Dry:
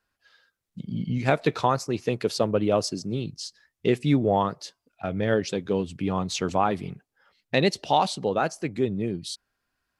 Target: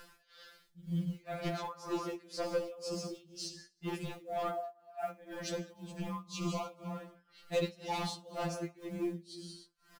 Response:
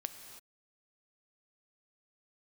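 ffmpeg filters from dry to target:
-filter_complex "[0:a]acompressor=mode=upward:threshold=0.0398:ratio=2.5[s0];[1:a]atrim=start_sample=2205,afade=t=out:st=0.29:d=0.01,atrim=end_sample=13230[s1];[s0][s1]afir=irnorm=-1:irlink=0,asettb=1/sr,asplit=3[s2][s3][s4];[s2]atrim=end=2.744[s5];[s3]atrim=start=2.74:end=3.15,asetpts=PTS-STARTPTS,afade=t=in:d=0.004:c=qsin,afade=t=out:st=0.406:d=0.004:c=qsin,acompressor=threshold=0.0447:ratio=2.5[s6];[s4]atrim=start=3.146[s7];[s5][s6]acrossfade=d=0.004:c1=hsin:c2=qsin[s8];[s8][s7]acrossfade=d=0.004:c1=qsin:c2=hsin,aecho=1:1:309:0.158,tremolo=f=2:d=0.95,asoftclip=type=tanh:threshold=0.0531,asettb=1/sr,asplit=3[s9][s10][s11];[s9]atrim=end=4.504[s12];[s10]atrim=start=4.5:end=5.23,asetpts=PTS-STARTPTS,afade=t=in:d=0.004:c=qsin,afade=t=out:st=0.726:d=0.004:c=qsin,highpass=420,equalizer=f=480:t=q:w=4:g=-7,equalizer=f=690:t=q:w=4:g=9,equalizer=f=1100:t=q:w=4:g=-5,equalizer=f=1600:t=q:w=4:g=3,lowpass=f=2300:w=0.5412,lowpass=f=2300:w=1.3066[s13];[s11]atrim=start=5.226[s14];[s12][s13]acrossfade=d=0.004:c1=hsin:c2=qsin[s15];[s15][s14]acrossfade=d=0.004:c1=qsin:c2=hsin,asplit=3[s16][s17][s18];[s16]afade=t=out:st=6.22:d=0.02[s19];[s17]asuperstop=centerf=1700:order=8:qfactor=2.1,afade=t=in:st=6.22:d=0.02,afade=t=out:st=6.88:d=0.02[s20];[s18]afade=t=in:st=6.88:d=0.02[s21];[s19][s20][s21]amix=inputs=3:normalize=0,acrusher=bits=7:mode=log:mix=0:aa=0.000001,afftfilt=real='re*2.83*eq(mod(b,8),0)':imag='im*2.83*eq(mod(b,8),0)':win_size=2048:overlap=0.75,volume=0.891"

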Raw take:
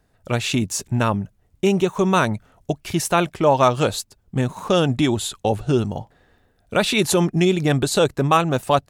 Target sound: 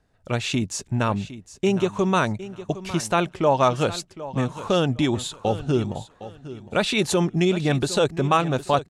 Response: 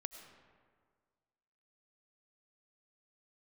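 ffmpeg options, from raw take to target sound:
-filter_complex "[0:a]lowpass=8200,asplit=2[s0][s1];[s1]aecho=0:1:760|1520|2280:0.178|0.0445|0.0111[s2];[s0][s2]amix=inputs=2:normalize=0,volume=0.708"

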